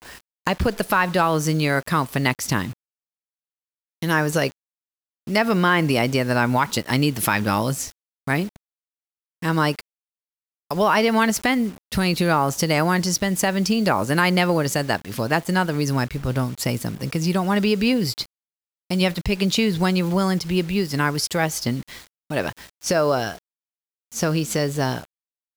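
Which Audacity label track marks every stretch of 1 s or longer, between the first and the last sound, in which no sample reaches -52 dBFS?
2.730000	4.020000	silence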